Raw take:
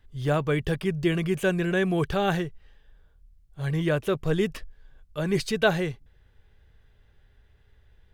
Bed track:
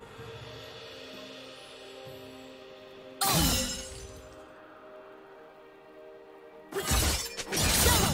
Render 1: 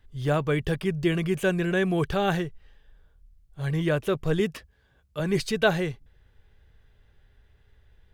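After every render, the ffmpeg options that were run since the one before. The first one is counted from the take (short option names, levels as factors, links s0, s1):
-filter_complex "[0:a]asettb=1/sr,asplit=3[s0][s1][s2];[s0]atrim=end=4.404[s3];[s1]atrim=start=4.4:end=5.2,asetpts=PTS-STARTPTS,afade=t=in:d=0.004:c=qsin,afade=t=out:st=0.796:d=0.004:c=qsin,highpass=f=57:w=0.5412,highpass=f=57:w=1.3066[s4];[s2]atrim=start=5.196[s5];[s3][s4]acrossfade=d=0.004:c1=hsin:c2=qsin[s6];[s6][s5]acrossfade=d=0.004:c1=qsin:c2=hsin"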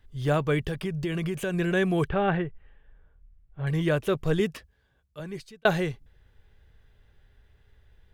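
-filter_complex "[0:a]asettb=1/sr,asplit=3[s0][s1][s2];[s0]atrim=end=0.604[s3];[s1]atrim=start=0.6:end=1.54,asetpts=PTS-STARTPTS,afade=t=in:d=0.004:c=qsin,afade=t=out:st=0.936:d=0.004:c=qsin,acompressor=threshold=0.0562:ratio=6:attack=3.2:release=140:knee=1:detection=peak[s4];[s2]atrim=start=1.536[s5];[s3][s4]acrossfade=d=0.004:c1=hsin:c2=qsin[s6];[s6][s5]acrossfade=d=0.004:c1=qsin:c2=hsin,asettb=1/sr,asplit=3[s7][s8][s9];[s7]atrim=end=2.094[s10];[s8]atrim=start=2.09:end=3.67,asetpts=PTS-STARTPTS,afade=t=in:d=0.004:c=qsin,afade=t=out:st=1.576:d=0.004:c=qsin,lowpass=f=2600:w=0.5412,lowpass=f=2600:w=1.3066[s11];[s9]atrim=start=3.666[s12];[s10][s11]acrossfade=d=0.004:c1=hsin:c2=qsin[s13];[s13][s12]acrossfade=d=0.004:c1=qsin:c2=hsin,asplit=2[s14][s15];[s14]atrim=end=5.65,asetpts=PTS-STARTPTS,afade=t=out:st=4.36:d=1.29[s16];[s15]atrim=start=5.65,asetpts=PTS-STARTPTS,afade=t=in:d=0.004:c=hsin[s17];[s16][s17]concat=n=2:v=0:a=1"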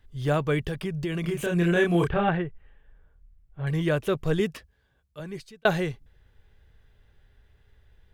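-filter_complex "[0:a]asettb=1/sr,asplit=3[s0][s1][s2];[s0]atrim=end=1.214[s3];[s1]atrim=start=1.21:end=2.29,asetpts=PTS-STARTPTS,afade=t=in:d=0.004:c=qsin,afade=t=out:st=1.076:d=0.004:c=qsin,asplit=2[s4][s5];[s5]adelay=29,volume=0.794[s6];[s4][s6]amix=inputs=2:normalize=0,atrim=end_sample=47628[s7];[s2]atrim=start=2.286[s8];[s3][s7]acrossfade=d=0.004:c1=hsin:c2=qsin[s9];[s9][s8]acrossfade=d=0.004:c1=qsin:c2=hsin"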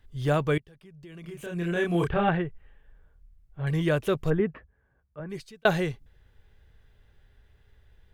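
-filter_complex "[0:a]asplit=3[s0][s1][s2];[s0]afade=t=out:st=4.29:d=0.02[s3];[s1]lowpass=f=1900:w=0.5412,lowpass=f=1900:w=1.3066,afade=t=in:st=4.29:d=0.02,afade=t=out:st=5.29:d=0.02[s4];[s2]afade=t=in:st=5.29:d=0.02[s5];[s3][s4][s5]amix=inputs=3:normalize=0,asplit=2[s6][s7];[s6]atrim=end=0.58,asetpts=PTS-STARTPTS,afade=t=out:st=0.576:d=0.004:c=hsin:silence=0.0668344[s8];[s7]atrim=start=0.58,asetpts=PTS-STARTPTS,afade=t=in:d=1.66:c=qua:silence=0.0668344[s9];[s8][s9]concat=n=2:v=0:a=1"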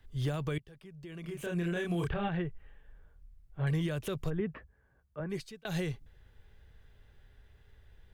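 -filter_complex "[0:a]acrossover=split=160|3000[s0][s1][s2];[s1]acompressor=threshold=0.0355:ratio=6[s3];[s0][s3][s2]amix=inputs=3:normalize=0,alimiter=limit=0.0631:level=0:latency=1:release=117"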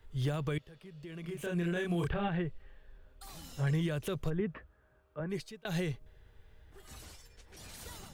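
-filter_complex "[1:a]volume=0.0596[s0];[0:a][s0]amix=inputs=2:normalize=0"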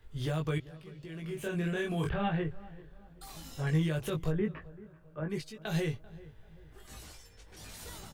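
-filter_complex "[0:a]asplit=2[s0][s1];[s1]adelay=19,volume=0.668[s2];[s0][s2]amix=inputs=2:normalize=0,asplit=2[s3][s4];[s4]adelay=389,lowpass=f=1400:p=1,volume=0.112,asplit=2[s5][s6];[s6]adelay=389,lowpass=f=1400:p=1,volume=0.42,asplit=2[s7][s8];[s8]adelay=389,lowpass=f=1400:p=1,volume=0.42[s9];[s3][s5][s7][s9]amix=inputs=4:normalize=0"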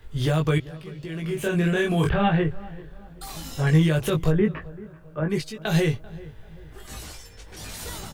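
-af "volume=3.35"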